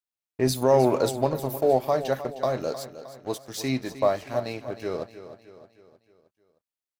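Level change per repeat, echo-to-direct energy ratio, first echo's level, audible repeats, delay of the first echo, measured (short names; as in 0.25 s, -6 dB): -6.0 dB, -12.0 dB, -13.0 dB, 4, 0.31 s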